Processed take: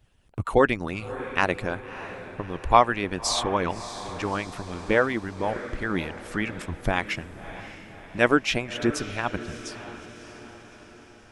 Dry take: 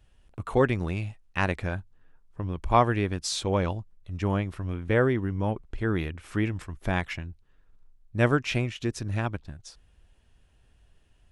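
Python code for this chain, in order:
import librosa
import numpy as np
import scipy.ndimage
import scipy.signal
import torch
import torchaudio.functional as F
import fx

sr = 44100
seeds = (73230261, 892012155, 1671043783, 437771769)

y = fx.hpss(x, sr, part='harmonic', gain_db=-18)
y = fx.echo_diffused(y, sr, ms=614, feedback_pct=55, wet_db=-13)
y = F.gain(torch.from_numpy(y), 6.5).numpy()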